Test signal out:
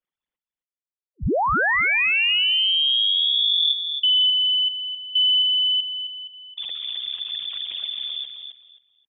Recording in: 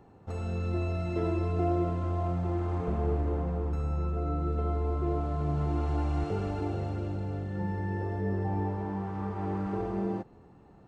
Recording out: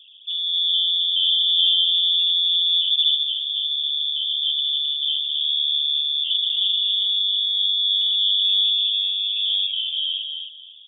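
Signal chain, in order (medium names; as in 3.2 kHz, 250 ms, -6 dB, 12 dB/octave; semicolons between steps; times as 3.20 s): resonances exaggerated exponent 3; feedback delay 265 ms, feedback 22%, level -7 dB; frequency inversion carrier 3.5 kHz; trim +7.5 dB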